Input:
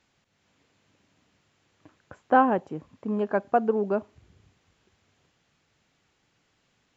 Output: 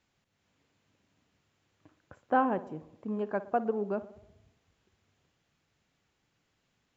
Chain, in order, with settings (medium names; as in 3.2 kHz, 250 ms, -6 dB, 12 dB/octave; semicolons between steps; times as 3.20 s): bass shelf 140 Hz +4 dB; tape echo 61 ms, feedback 67%, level -14 dB, low-pass 1.6 kHz; trim -7 dB